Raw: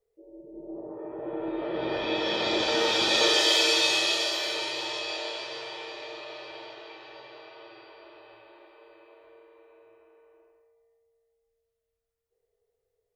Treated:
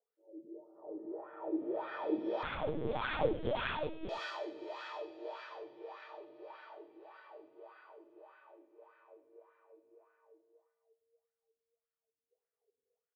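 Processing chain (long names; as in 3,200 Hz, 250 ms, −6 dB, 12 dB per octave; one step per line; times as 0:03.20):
LFO wah 1.7 Hz 250–1,500 Hz, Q 5.2
0:02.43–0:04.09: linear-prediction vocoder at 8 kHz pitch kept
single-tap delay 100 ms −17 dB
level +2 dB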